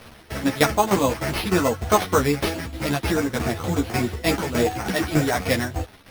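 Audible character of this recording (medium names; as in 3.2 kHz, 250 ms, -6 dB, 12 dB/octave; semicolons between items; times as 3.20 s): a quantiser's noise floor 8-bit, dither none; tremolo saw down 3.3 Hz, depth 75%; aliases and images of a low sample rate 7.3 kHz, jitter 0%; a shimmering, thickened sound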